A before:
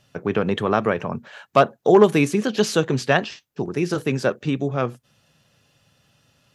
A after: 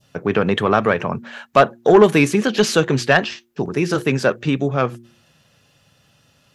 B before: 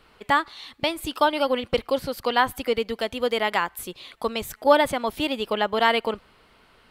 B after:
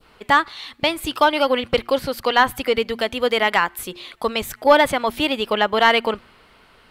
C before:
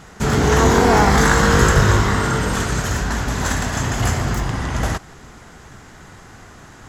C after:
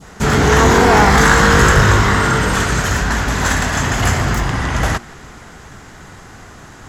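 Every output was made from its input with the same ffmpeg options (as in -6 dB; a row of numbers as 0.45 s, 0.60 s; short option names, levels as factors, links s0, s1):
-af "adynamicequalizer=threshold=0.0224:dfrequency=1900:dqfactor=0.72:tfrequency=1900:tqfactor=0.72:attack=5:release=100:ratio=0.375:range=2:mode=boostabove:tftype=bell,acontrast=36,bandreject=f=117.5:t=h:w=4,bandreject=f=235:t=h:w=4,bandreject=f=352.5:t=h:w=4,volume=0.841"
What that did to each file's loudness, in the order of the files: +3.5 LU, +5.0 LU, +4.0 LU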